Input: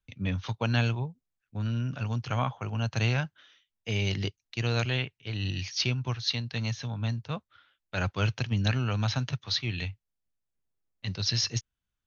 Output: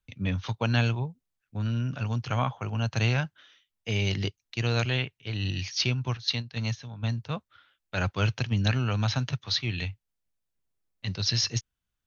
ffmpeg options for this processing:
-filter_complex "[0:a]asettb=1/sr,asplit=3[s0][s1][s2];[s0]atrim=end=6.174[s3];[s1]atrim=start=6.17:end=7.09,asetpts=PTS-STARTPTS,afade=t=in:d=0.004:c=qsin,afade=t=out:st=0.916:d=0.004:c=qsin,agate=range=0.398:threshold=0.0282:ratio=16:detection=peak[s4];[s2]atrim=start=7.086[s5];[s3][s4]acrossfade=d=0.004:c1=hsin:c2=qsin[s6];[s6][s5]acrossfade=d=0.004:c1=qsin:c2=hsin,volume=1.19"

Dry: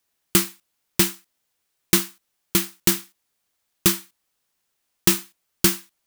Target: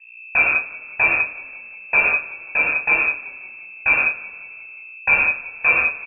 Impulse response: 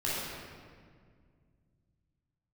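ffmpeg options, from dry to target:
-filter_complex "[0:a]aeval=exprs='val(0)+0.00447*(sin(2*PI*60*n/s)+sin(2*PI*2*60*n/s)/2+sin(2*PI*3*60*n/s)/3+sin(2*PI*4*60*n/s)/4+sin(2*PI*5*60*n/s)/5)':c=same[s0];[1:a]atrim=start_sample=2205,afade=t=out:st=0.26:d=0.01,atrim=end_sample=11907[s1];[s0][s1]afir=irnorm=-1:irlink=0,lowpass=f=2300:t=q:w=0.5098,lowpass=f=2300:t=q:w=0.6013,lowpass=f=2300:t=q:w=0.9,lowpass=f=2300:t=q:w=2.563,afreqshift=-2700,asplit=6[s2][s3][s4][s5][s6][s7];[s3]adelay=178,afreqshift=-35,volume=0.112[s8];[s4]adelay=356,afreqshift=-70,volume=0.0631[s9];[s5]adelay=534,afreqshift=-105,volume=0.0351[s10];[s6]adelay=712,afreqshift=-140,volume=0.0197[s11];[s7]adelay=890,afreqshift=-175,volume=0.0111[s12];[s2][s8][s9][s10][s11][s12]amix=inputs=6:normalize=0"

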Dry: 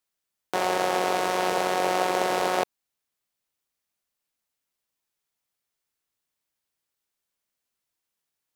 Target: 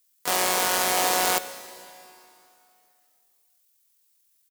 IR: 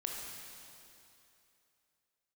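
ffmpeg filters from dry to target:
-filter_complex "[0:a]acontrast=27,atempo=1.9,asoftclip=type=hard:threshold=0.251,asplit=3[s0][s1][s2];[s1]asetrate=22050,aresample=44100,atempo=2,volume=0.2[s3];[s2]asetrate=58866,aresample=44100,atempo=0.749154,volume=0.398[s4];[s0][s3][s4]amix=inputs=3:normalize=0,crystalizer=i=7.5:c=0,asplit=2[s5][s6];[1:a]atrim=start_sample=2205[s7];[s6][s7]afir=irnorm=-1:irlink=0,volume=0.316[s8];[s5][s8]amix=inputs=2:normalize=0,volume=0.299"

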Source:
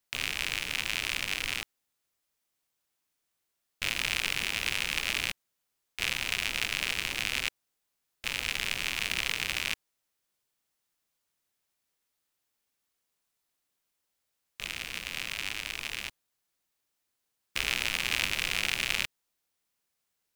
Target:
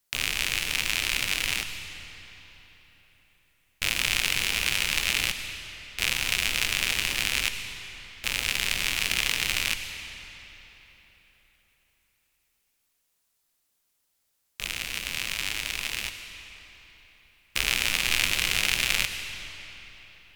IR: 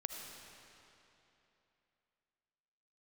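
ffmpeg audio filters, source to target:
-filter_complex "[0:a]asplit=2[s0][s1];[s1]lowshelf=f=120:g=10.5[s2];[1:a]atrim=start_sample=2205,asetrate=33516,aresample=44100,highshelf=f=3800:g=11.5[s3];[s2][s3]afir=irnorm=-1:irlink=0,volume=0.631[s4];[s0][s4]amix=inputs=2:normalize=0,volume=0.891"

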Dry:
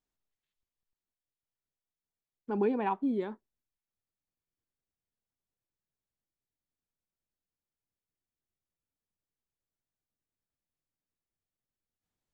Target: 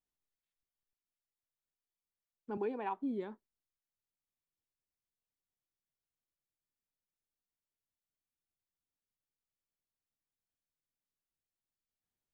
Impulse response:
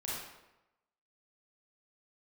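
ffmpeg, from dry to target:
-filter_complex "[0:a]asettb=1/sr,asplit=3[s0][s1][s2];[s0]atrim=end=2.574[s3];[s1]atrim=start=2.57:end=2.97,asetpts=PTS-STARTPTS,afade=t=in:d=0.004:c=qsin,afade=t=out:st=0.396:d=0.004:c=qsin,highpass=300[s4];[s2]atrim=start=2.966[s5];[s3][s4]acrossfade=d=0.004:c1=hsin:c2=qsin[s6];[s6][s5]acrossfade=d=0.004:c1=qsin:c2=hsin,volume=0.473"

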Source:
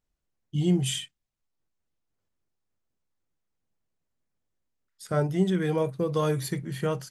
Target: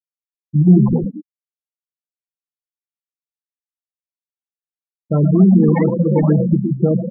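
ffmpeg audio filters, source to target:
-filter_complex "[0:a]aresample=8000,asoftclip=type=tanh:threshold=0.075,aresample=44100,highpass=90,acrusher=samples=22:mix=1:aa=0.000001:lfo=1:lforange=22:lforate=2.3,asplit=8[s0][s1][s2][s3][s4][s5][s6][s7];[s1]adelay=114,afreqshift=31,volume=0.473[s8];[s2]adelay=228,afreqshift=62,volume=0.26[s9];[s3]adelay=342,afreqshift=93,volume=0.143[s10];[s4]adelay=456,afreqshift=124,volume=0.0785[s11];[s5]adelay=570,afreqshift=155,volume=0.0432[s12];[s6]adelay=684,afreqshift=186,volume=0.0237[s13];[s7]adelay=798,afreqshift=217,volume=0.013[s14];[s0][s8][s9][s10][s11][s12][s13][s14]amix=inputs=8:normalize=0,afftfilt=real='re*gte(hypot(re,im),0.0794)':imag='im*gte(hypot(re,im),0.0794)':win_size=1024:overlap=0.75,aecho=1:1:6:0.4,acontrast=31,equalizer=f=230:t=o:w=1.2:g=8.5,bandreject=f=1400:w=11,afftfilt=real='re*(1-between(b*sr/1024,350*pow(3100/350,0.5+0.5*sin(2*PI*4.1*pts/sr))/1.41,350*pow(3100/350,0.5+0.5*sin(2*PI*4.1*pts/sr))*1.41))':imag='im*(1-between(b*sr/1024,350*pow(3100/350,0.5+0.5*sin(2*PI*4.1*pts/sr))/1.41,350*pow(3100/350,0.5+0.5*sin(2*PI*4.1*pts/sr))*1.41))':win_size=1024:overlap=0.75,volume=1.68"

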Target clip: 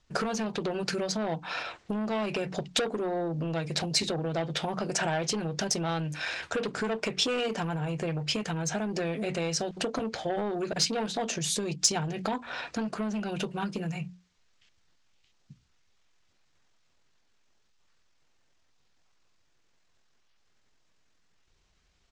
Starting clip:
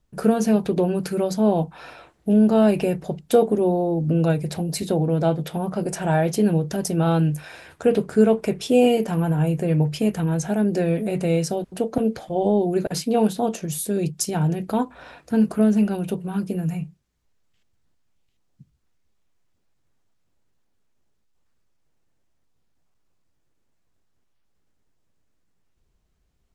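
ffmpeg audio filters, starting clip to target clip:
-af "lowpass=f=6600:w=0.5412,lowpass=f=6600:w=1.3066,bandreject=f=60:t=h:w=6,bandreject=f=120:t=h:w=6,bandreject=f=180:t=h:w=6,bandreject=f=240:t=h:w=6,bandreject=f=300:t=h:w=6,asoftclip=type=tanh:threshold=0.158,acompressor=threshold=0.0355:ratio=16,atempo=1.2,tiltshelf=f=850:g=-6.5,volume=1.78"

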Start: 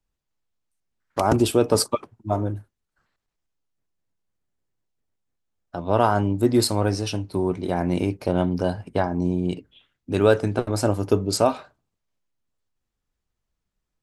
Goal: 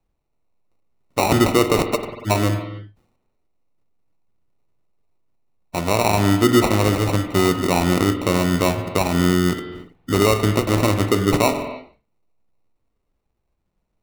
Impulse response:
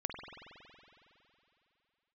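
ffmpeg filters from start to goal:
-filter_complex "[0:a]alimiter=limit=0.237:level=0:latency=1:release=122,acrusher=samples=27:mix=1:aa=0.000001,asplit=2[s0][s1];[1:a]atrim=start_sample=2205,afade=t=out:st=0.37:d=0.01,atrim=end_sample=16758,asetrate=43218,aresample=44100[s2];[s1][s2]afir=irnorm=-1:irlink=0,volume=0.944[s3];[s0][s3]amix=inputs=2:normalize=0,volume=1.19"

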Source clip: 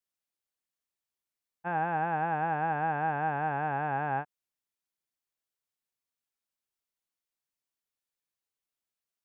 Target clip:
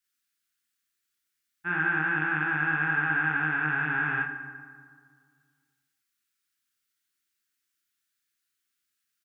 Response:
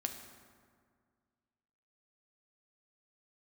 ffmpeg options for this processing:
-filter_complex "[0:a]firequalizer=gain_entry='entry(220,0);entry(350,4);entry(560,-22);entry(1400,11);entry(2300,8)':delay=0.05:min_phase=1,asplit=2[s0][s1];[1:a]atrim=start_sample=2205,adelay=39[s2];[s1][s2]afir=irnorm=-1:irlink=0,volume=1.12[s3];[s0][s3]amix=inputs=2:normalize=0,volume=0.841"

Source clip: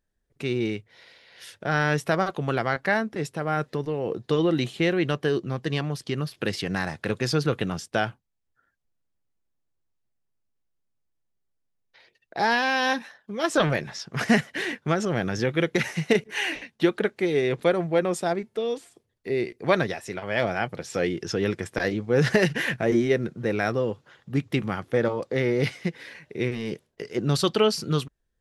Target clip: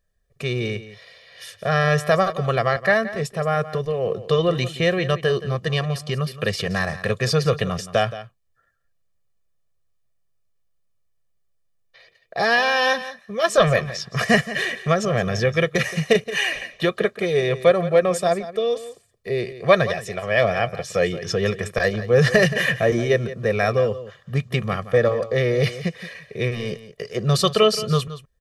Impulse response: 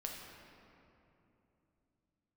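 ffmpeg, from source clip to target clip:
-af "aecho=1:1:1.7:0.89,aecho=1:1:173:0.188,volume=1.33"

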